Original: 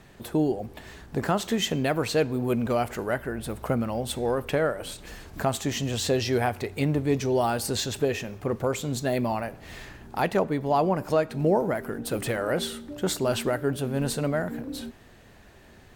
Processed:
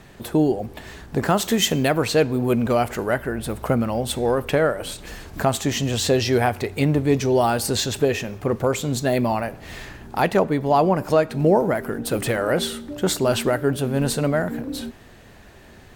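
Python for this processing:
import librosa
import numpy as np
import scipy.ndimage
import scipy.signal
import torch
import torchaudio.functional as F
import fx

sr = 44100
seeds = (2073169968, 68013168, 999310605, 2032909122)

y = fx.high_shelf(x, sr, hz=fx.line((1.29, 9500.0), (1.87, 5700.0)), db=9.0, at=(1.29, 1.87), fade=0.02)
y = y * 10.0 ** (5.5 / 20.0)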